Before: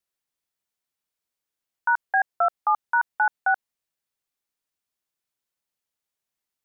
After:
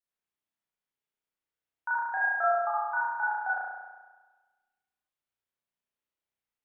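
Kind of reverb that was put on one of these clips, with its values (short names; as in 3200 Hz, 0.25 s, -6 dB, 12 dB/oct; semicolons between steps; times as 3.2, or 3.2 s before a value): spring tank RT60 1.3 s, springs 33 ms, chirp 75 ms, DRR -8 dB; gain -12 dB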